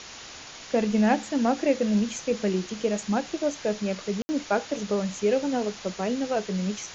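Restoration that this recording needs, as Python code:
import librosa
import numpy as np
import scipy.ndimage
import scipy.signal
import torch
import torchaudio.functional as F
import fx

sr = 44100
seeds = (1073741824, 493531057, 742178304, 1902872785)

y = fx.fix_ambience(x, sr, seeds[0], print_start_s=0.2, print_end_s=0.7, start_s=4.22, end_s=4.29)
y = fx.noise_reduce(y, sr, print_start_s=0.2, print_end_s=0.7, reduce_db=28.0)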